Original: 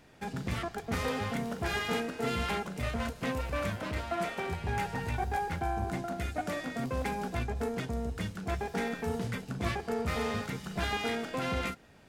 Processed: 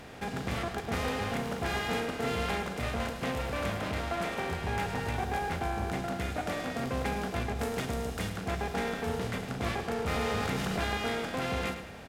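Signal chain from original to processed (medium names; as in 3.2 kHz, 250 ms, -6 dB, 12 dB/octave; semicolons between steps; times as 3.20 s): spectral levelling over time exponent 0.6; 1.30–1.99 s: crackle 130 per s -43 dBFS; 7.59–8.30 s: treble shelf 5.3 kHz +7.5 dB; on a send: feedback delay 106 ms, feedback 42%, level -10.5 dB; 10.06–10.83 s: on the sum: level flattener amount 70%; trim -3 dB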